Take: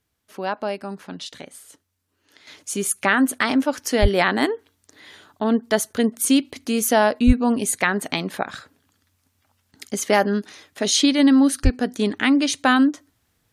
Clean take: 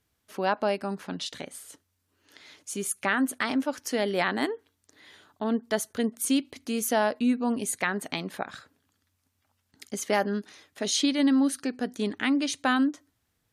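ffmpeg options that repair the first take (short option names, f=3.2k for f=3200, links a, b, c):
-filter_complex "[0:a]asplit=3[a][b][c];[a]afade=t=out:st=4.01:d=0.02[d];[b]highpass=f=140:w=0.5412,highpass=f=140:w=1.3066,afade=t=in:st=4.01:d=0.02,afade=t=out:st=4.13:d=0.02[e];[c]afade=t=in:st=4.13:d=0.02[f];[d][e][f]amix=inputs=3:normalize=0,asplit=3[g][h][i];[g]afade=t=out:st=7.26:d=0.02[j];[h]highpass=f=140:w=0.5412,highpass=f=140:w=1.3066,afade=t=in:st=7.26:d=0.02,afade=t=out:st=7.38:d=0.02[k];[i]afade=t=in:st=7.38:d=0.02[l];[j][k][l]amix=inputs=3:normalize=0,asplit=3[m][n][o];[m]afade=t=out:st=11.63:d=0.02[p];[n]highpass=f=140:w=0.5412,highpass=f=140:w=1.3066,afade=t=in:st=11.63:d=0.02,afade=t=out:st=11.75:d=0.02[q];[o]afade=t=in:st=11.75:d=0.02[r];[p][q][r]amix=inputs=3:normalize=0,asetnsamples=n=441:p=0,asendcmd='2.47 volume volume -7.5dB',volume=0dB"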